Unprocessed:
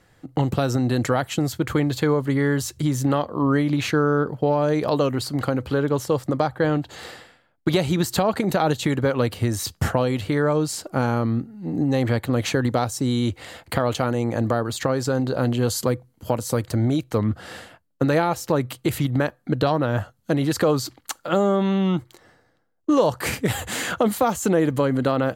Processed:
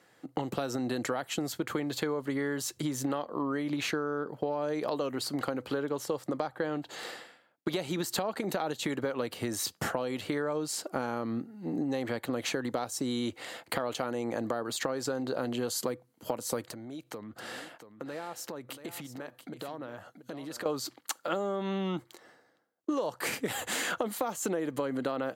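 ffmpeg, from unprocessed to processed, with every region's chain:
ffmpeg -i in.wav -filter_complex "[0:a]asettb=1/sr,asplit=3[link_01][link_02][link_03];[link_01]atrim=end=16.684[link_04];[link_02]atrim=start=16.68:end=20.66,asetpts=PTS-STARTPTS,afade=type=in:duration=0.004:curve=qsin,afade=type=out:start_time=3.976:duration=0.004:curve=qsin,acompressor=threshold=-33dB:ratio=6:attack=3.2:release=140:knee=1:detection=peak,aecho=1:1:683:0.282,atrim=end_sample=175518[link_05];[link_03]atrim=start=20.656[link_06];[link_04][link_05]acrossfade=duration=0.004:curve1=hsin:curve2=qsin[link_07];[link_07][link_06]acrossfade=duration=0.004:curve1=qsin:curve2=hsin,highpass=250,acompressor=threshold=-26dB:ratio=6,volume=-2.5dB" out.wav

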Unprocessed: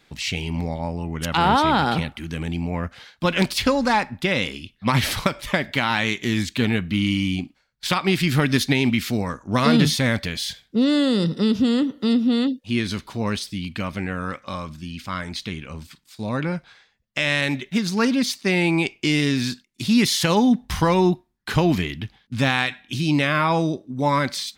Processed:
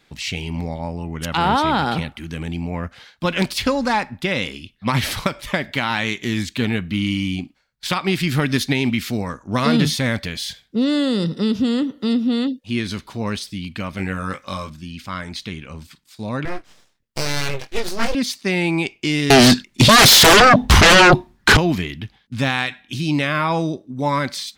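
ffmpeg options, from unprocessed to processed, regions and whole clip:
ffmpeg -i in.wav -filter_complex "[0:a]asettb=1/sr,asplit=3[link_01][link_02][link_03];[link_01]atrim=end=13.974[link_04];[link_02]atrim=start=13.97:end=14.7,asetpts=PTS-STARTPTS,afade=type=in:duration=0.004:curve=qsin,afade=type=out:start_time=0.726:duration=0.004:curve=qsin,highshelf=frequency=5100:gain=9.5,asplit=2[link_05][link_06];[link_06]adelay=21,volume=-5.5dB[link_07];[link_05][link_07]amix=inputs=2:normalize=0,atrim=end_sample=32193[link_08];[link_03]atrim=start=14.696[link_09];[link_04][link_08]acrossfade=duration=0.004:curve1=hsin:curve2=qsin[link_10];[link_10][link_09]acrossfade=duration=0.004:curve1=qsin:curve2=hsin,asettb=1/sr,asplit=3[link_11][link_12][link_13];[link_11]atrim=end=16.454[link_14];[link_12]atrim=start=16.45:end=18.15,asetpts=PTS-STARTPTS,afade=type=in:duration=0.004:curve=qsin,afade=type=out:start_time=1.696:duration=0.004:curve=qsin,asuperstop=centerf=700:order=20:qfactor=2.6,asplit=2[link_15][link_16];[link_16]adelay=22,volume=-5dB[link_17];[link_15][link_17]amix=inputs=2:normalize=0,atrim=end_sample=74970,aeval=exprs='abs(val(0))':channel_layout=same[link_18];[link_13]atrim=start=18.146[link_19];[link_14][link_18]acrossfade=duration=0.004:curve1=hsin:curve2=qsin[link_20];[link_20][link_19]acrossfade=duration=0.004:curve1=qsin:curve2=hsin,asettb=1/sr,asplit=3[link_21][link_22][link_23];[link_21]atrim=end=19.304[link_24];[link_22]atrim=start=19.3:end=21.57,asetpts=PTS-STARTPTS,afade=type=in:duration=0.004:curve=qsin,afade=type=out:start_time=2.266:duration=0.004:curve=qsin,lowpass=frequency=3900:poles=1,aeval=exprs='0.501*sin(PI/2*7.94*val(0)/0.501)':channel_layout=same[link_25];[link_23]atrim=start=21.566[link_26];[link_24][link_25]acrossfade=duration=0.004:curve1=hsin:curve2=qsin[link_27];[link_27][link_26]acrossfade=duration=0.004:curve1=qsin:curve2=hsin" out.wav

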